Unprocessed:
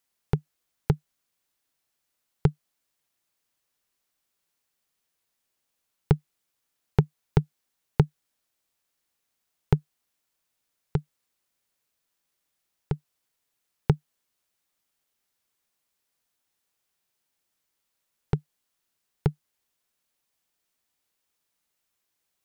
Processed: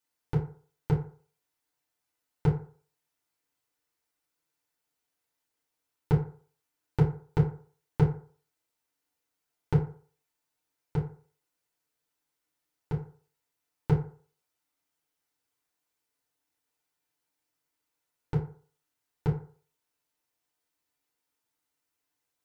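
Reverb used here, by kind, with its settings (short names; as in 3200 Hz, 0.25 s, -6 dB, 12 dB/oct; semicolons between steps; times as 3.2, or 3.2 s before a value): FDN reverb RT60 0.45 s, low-frequency decay 0.8×, high-frequency decay 0.5×, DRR -6.5 dB; gain -10 dB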